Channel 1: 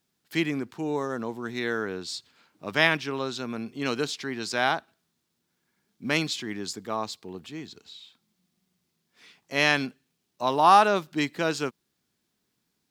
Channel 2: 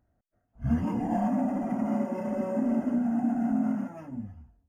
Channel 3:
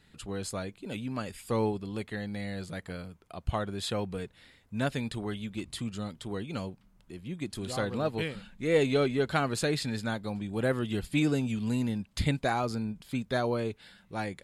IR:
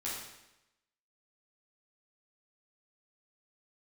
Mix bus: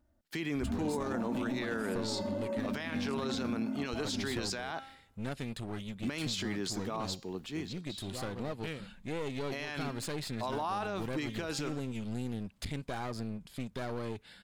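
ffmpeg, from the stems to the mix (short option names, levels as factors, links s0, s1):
-filter_complex "[0:a]agate=range=0.158:threshold=0.00398:ratio=16:detection=peak,bandreject=f=267.9:t=h:w=4,bandreject=f=535.8:t=h:w=4,bandreject=f=803.7:t=h:w=4,bandreject=f=1071.6:t=h:w=4,bandreject=f=1339.5:t=h:w=4,bandreject=f=1607.4:t=h:w=4,bandreject=f=1875.3:t=h:w=4,bandreject=f=2143.2:t=h:w=4,bandreject=f=2411.1:t=h:w=4,bandreject=f=2679:t=h:w=4,bandreject=f=2946.9:t=h:w=4,bandreject=f=3214.8:t=h:w=4,bandreject=f=3482.7:t=h:w=4,bandreject=f=3750.6:t=h:w=4,bandreject=f=4018.5:t=h:w=4,bandreject=f=4286.4:t=h:w=4,bandreject=f=4554.3:t=h:w=4,bandreject=f=4822.2:t=h:w=4,bandreject=f=5090.1:t=h:w=4,bandreject=f=5358:t=h:w=4,bandreject=f=5625.9:t=h:w=4,bandreject=f=5893.8:t=h:w=4,bandreject=f=6161.7:t=h:w=4,bandreject=f=6429.6:t=h:w=4,bandreject=f=6697.5:t=h:w=4,bandreject=f=6965.4:t=h:w=4,bandreject=f=7233.3:t=h:w=4,bandreject=f=7501.2:t=h:w=4,acompressor=threshold=0.0562:ratio=6,volume=0.944[s0];[1:a]aecho=1:1:3.4:0.88,acompressor=threshold=0.0282:ratio=6,volume=0.794[s1];[2:a]acompressor=threshold=0.0282:ratio=3,aeval=exprs='clip(val(0),-1,0.00944)':c=same,adelay=450,volume=0.841[s2];[s0][s1][s2]amix=inputs=3:normalize=0,alimiter=level_in=1.26:limit=0.0631:level=0:latency=1:release=17,volume=0.794"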